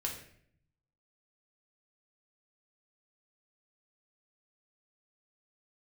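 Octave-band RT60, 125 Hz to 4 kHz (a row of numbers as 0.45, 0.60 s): 1.2, 0.90, 0.70, 0.55, 0.65, 0.50 s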